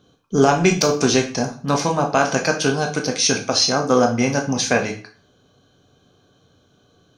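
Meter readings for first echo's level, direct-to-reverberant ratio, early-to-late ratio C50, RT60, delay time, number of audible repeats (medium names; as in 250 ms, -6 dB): no echo, 3.0 dB, 10.5 dB, 0.40 s, no echo, no echo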